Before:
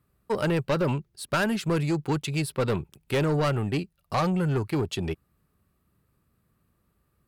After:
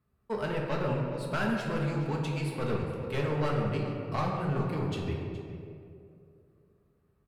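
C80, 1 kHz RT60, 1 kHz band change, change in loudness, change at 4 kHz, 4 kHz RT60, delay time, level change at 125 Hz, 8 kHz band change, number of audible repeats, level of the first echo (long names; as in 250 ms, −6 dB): 3.0 dB, 2.1 s, −3.5 dB, −4.5 dB, −7.5 dB, 1.4 s, 419 ms, −3.5 dB, −12.0 dB, 1, −15.0 dB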